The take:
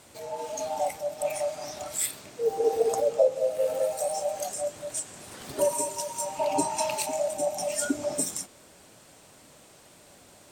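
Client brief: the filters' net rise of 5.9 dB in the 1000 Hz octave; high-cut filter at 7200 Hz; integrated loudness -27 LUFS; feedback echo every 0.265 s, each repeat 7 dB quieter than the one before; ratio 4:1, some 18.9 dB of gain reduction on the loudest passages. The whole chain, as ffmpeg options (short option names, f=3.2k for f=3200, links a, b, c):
-af "lowpass=7.2k,equalizer=f=1k:t=o:g=7.5,acompressor=threshold=-38dB:ratio=4,aecho=1:1:265|530|795|1060|1325:0.447|0.201|0.0905|0.0407|0.0183,volume=11.5dB"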